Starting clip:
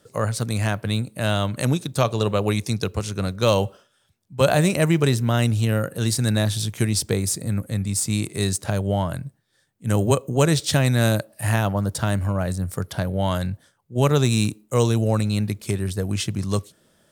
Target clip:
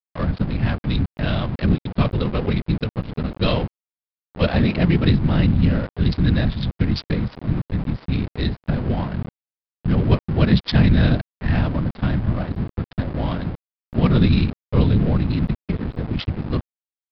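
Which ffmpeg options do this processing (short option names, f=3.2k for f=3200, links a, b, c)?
-af "equalizer=f=125:t=o:w=1:g=11,equalizer=f=250:t=o:w=1:g=5,equalizer=f=2k:t=o:w=1:g=5,equalizer=f=4k:t=o:w=1:g=9,afftfilt=real='hypot(re,im)*cos(2*PI*random(0))':imag='hypot(re,im)*sin(2*PI*random(1))':win_size=512:overlap=0.75,aresample=16000,aeval=exprs='val(0)*gte(abs(val(0)),0.0398)':c=same,aresample=44100,adynamicsmooth=sensitivity=2.5:basefreq=820,aresample=11025,aresample=44100"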